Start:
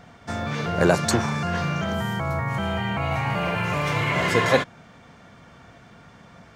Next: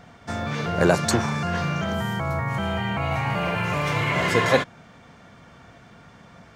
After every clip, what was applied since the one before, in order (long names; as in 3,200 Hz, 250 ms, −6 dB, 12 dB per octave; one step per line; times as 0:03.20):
no processing that can be heard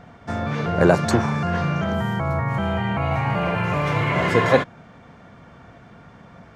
high-shelf EQ 2,800 Hz −11 dB
level +3.5 dB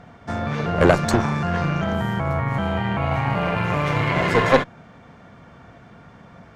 harmonic generator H 4 −14 dB, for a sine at −2 dBFS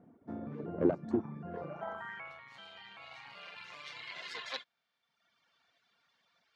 reverb reduction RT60 1.1 s
band-pass filter sweep 300 Hz → 4,200 Hz, 0:01.45–0:02.43
level −6 dB